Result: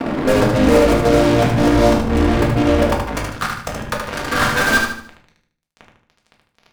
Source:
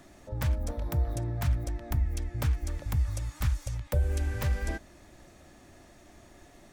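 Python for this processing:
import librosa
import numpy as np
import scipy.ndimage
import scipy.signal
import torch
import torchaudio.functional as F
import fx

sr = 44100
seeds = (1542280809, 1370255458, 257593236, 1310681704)

p1 = fx.wiener(x, sr, points=41)
p2 = fx.graphic_eq_15(p1, sr, hz=(250, 1600, 6300), db=(10, 9, 4))
p3 = fx.over_compress(p2, sr, threshold_db=-34.0, ratio=-1.0)
p4 = fx.filter_sweep_bandpass(p3, sr, from_hz=500.0, to_hz=1200.0, start_s=2.62, end_s=3.23, q=2.3)
p5 = fx.fuzz(p4, sr, gain_db=57.0, gate_db=-56.0)
p6 = p5 + fx.echo_feedback(p5, sr, ms=75, feedback_pct=38, wet_db=-5, dry=0)
p7 = fx.room_shoebox(p6, sr, seeds[0], volume_m3=300.0, walls='furnished', distance_m=1.7)
y = p7 * 10.0 ** (-1.5 / 20.0)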